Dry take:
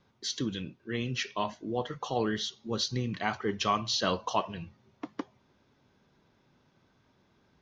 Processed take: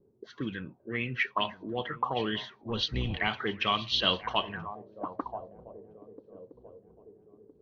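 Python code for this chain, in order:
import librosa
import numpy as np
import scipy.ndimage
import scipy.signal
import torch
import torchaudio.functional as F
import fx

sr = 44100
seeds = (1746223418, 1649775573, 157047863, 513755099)

y = fx.octave_divider(x, sr, octaves=1, level_db=1.0, at=(2.62, 3.28))
y = fx.echo_swing(y, sr, ms=1314, ratio=3, feedback_pct=40, wet_db=-17.0)
y = fx.envelope_lowpass(y, sr, base_hz=400.0, top_hz=3200.0, q=5.9, full_db=-26.5, direction='up')
y = y * librosa.db_to_amplitude(-2.5)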